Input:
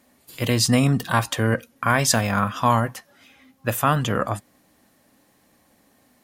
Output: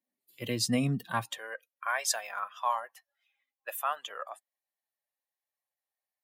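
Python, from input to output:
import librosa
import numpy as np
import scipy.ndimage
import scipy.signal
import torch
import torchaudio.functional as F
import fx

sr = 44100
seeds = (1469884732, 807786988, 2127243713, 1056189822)

y = fx.bin_expand(x, sr, power=1.5)
y = fx.highpass(y, sr, hz=fx.steps((0.0, 130.0), (1.38, 640.0)), slope=24)
y = y * librosa.db_to_amplitude(-8.0)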